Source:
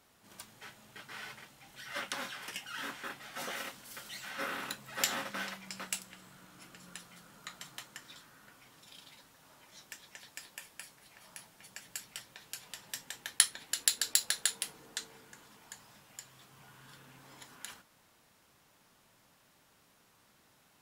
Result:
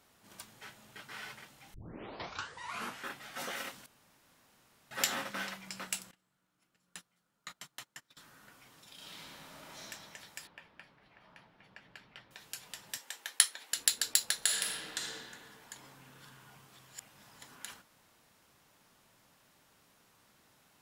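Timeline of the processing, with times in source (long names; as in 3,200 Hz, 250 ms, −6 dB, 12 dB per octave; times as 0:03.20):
0:01.74: tape start 1.32 s
0:03.86–0:04.91: fill with room tone
0:06.11–0:08.17: noise gate −50 dBFS, range −23 dB
0:08.95–0:09.84: thrown reverb, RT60 2.8 s, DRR −8.5 dB
0:10.47–0:12.31: high-frequency loss of the air 340 metres
0:12.97–0:13.73: high-pass filter 470 Hz
0:14.37–0:15.13: thrown reverb, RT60 2.1 s, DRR −3 dB
0:15.76–0:17.42: reverse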